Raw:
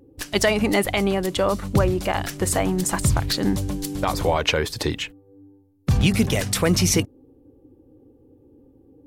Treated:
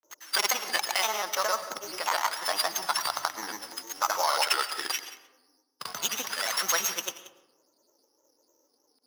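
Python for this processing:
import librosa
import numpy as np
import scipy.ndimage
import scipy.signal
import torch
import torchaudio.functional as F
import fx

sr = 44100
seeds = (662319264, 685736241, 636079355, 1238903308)

p1 = np.r_[np.sort(x[:len(x) // 8 * 8].reshape(-1, 8), axis=1).ravel(), x[len(x) // 8 * 8:]]
p2 = fx.granulator(p1, sr, seeds[0], grain_ms=100.0, per_s=20.0, spray_ms=100.0, spread_st=3)
p3 = fx.highpass_res(p2, sr, hz=1100.0, q=1.7)
p4 = fx.notch(p3, sr, hz=2400.0, q=15.0)
p5 = p4 + fx.echo_single(p4, sr, ms=181, db=-16.0, dry=0)
p6 = fx.rev_freeverb(p5, sr, rt60_s=1.1, hf_ratio=0.4, predelay_ms=70, drr_db=13.5)
y = p6 * librosa.db_to_amplitude(-1.5)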